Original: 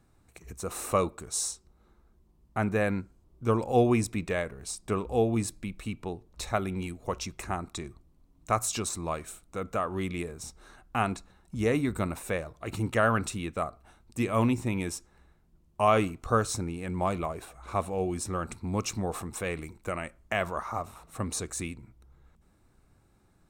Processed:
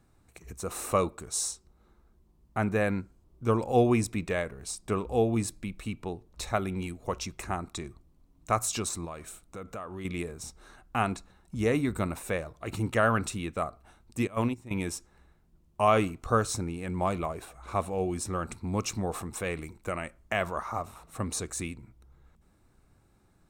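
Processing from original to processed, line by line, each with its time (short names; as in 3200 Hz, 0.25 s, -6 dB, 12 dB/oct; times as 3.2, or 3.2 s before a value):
9.05–10.05 compressor 2.5:1, threshold -39 dBFS
14.27–14.71 gate -24 dBFS, range -15 dB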